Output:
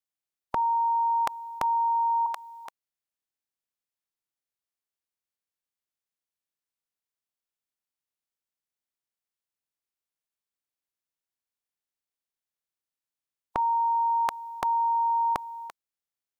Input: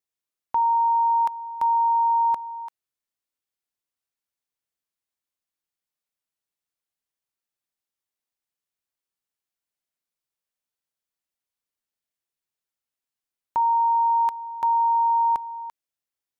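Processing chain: spectral peaks clipped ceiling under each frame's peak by 23 dB; 2.26–2.66 s: Bessel high-pass 1.3 kHz, order 2; trim -4 dB

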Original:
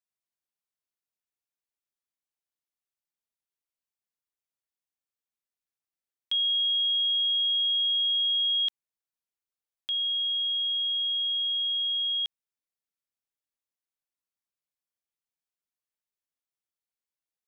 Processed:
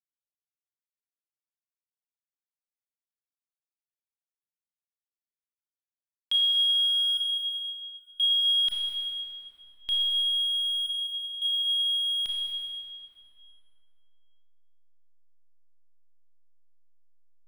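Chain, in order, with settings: 7.17–8.20 s: Savitzky-Golay filter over 65 samples; 10.86–11.42 s: inverted gate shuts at -43 dBFS, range -28 dB; hysteresis with a dead band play -40 dBFS; reverberation RT60 3.1 s, pre-delay 23 ms, DRR -2.5 dB; trim +1.5 dB

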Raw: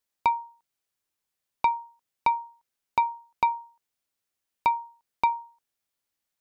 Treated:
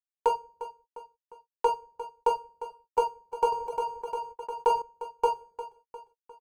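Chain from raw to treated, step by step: median filter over 41 samples; dynamic bell 580 Hz, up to +4 dB, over -41 dBFS, Q 0.81; feedback delay 352 ms, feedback 48%, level -13.5 dB; simulated room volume 41 m³, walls mixed, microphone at 0.58 m; reverb removal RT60 0.61 s; graphic EQ 125/250/500/1000/2000/4000 Hz -8/-10/+9/+10/-6/-7 dB; gate -52 dBFS, range -41 dB; 3.52–4.82 s: level flattener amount 50%; trim -4.5 dB

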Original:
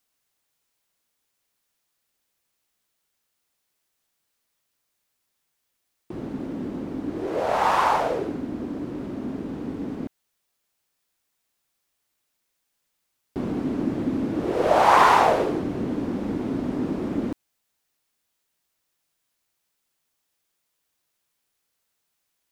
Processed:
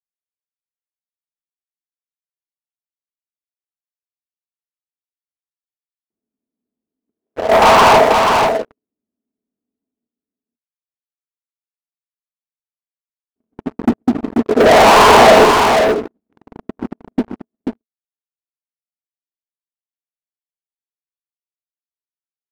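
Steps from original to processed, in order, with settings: in parallel at -2.5 dB: peak limiter -12 dBFS, peak gain reduction 9 dB; on the sum: low-pass that closes with the level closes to 2.1 kHz, closed at -17 dBFS; gate -16 dBFS, range -53 dB; small resonant body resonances 230/430/650 Hz, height 10 dB, ringing for 85 ms; saturation -3.5 dBFS, distortion -21 dB; peaking EQ 130 Hz -13.5 dB 0.2 oct; waveshaping leveller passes 5; on a send: delay 486 ms -4.5 dB; on the sum: trim -1 dB

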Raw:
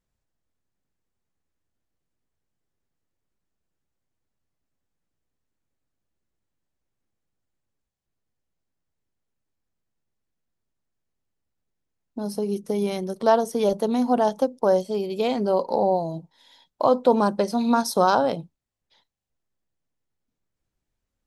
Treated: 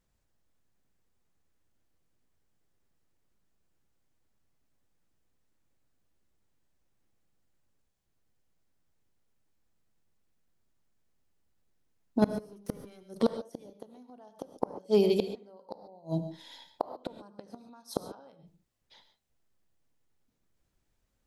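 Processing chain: in parallel at +0.5 dB: peak limiter -15 dBFS, peak gain reduction 9 dB; 12.22–13.03 s: on the sum: waveshaping leveller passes 2; inverted gate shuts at -11 dBFS, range -35 dB; band-passed feedback delay 75 ms, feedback 45%, band-pass 420 Hz, level -20.5 dB; gated-style reverb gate 160 ms rising, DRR 10 dB; trim -2.5 dB

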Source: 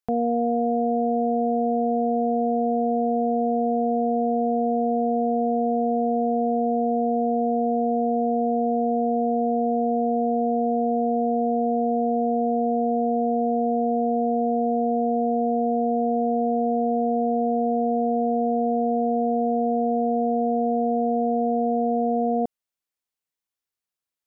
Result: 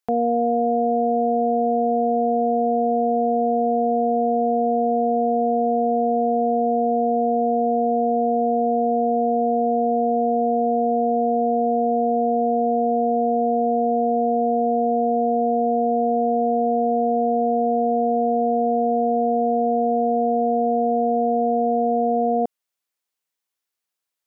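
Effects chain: bass shelf 200 Hz -11.5 dB; trim +5 dB

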